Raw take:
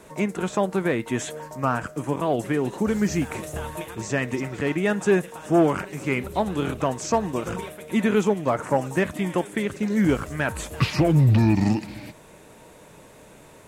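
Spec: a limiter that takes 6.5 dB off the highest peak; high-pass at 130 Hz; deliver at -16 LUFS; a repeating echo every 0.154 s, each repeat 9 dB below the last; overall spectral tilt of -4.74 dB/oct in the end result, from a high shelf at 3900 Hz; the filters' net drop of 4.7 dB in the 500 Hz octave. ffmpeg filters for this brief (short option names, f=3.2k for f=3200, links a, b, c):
-af "highpass=130,equalizer=f=500:t=o:g=-6.5,highshelf=f=3.9k:g=6,alimiter=limit=-16.5dB:level=0:latency=1,aecho=1:1:154|308|462|616:0.355|0.124|0.0435|0.0152,volume=12dB"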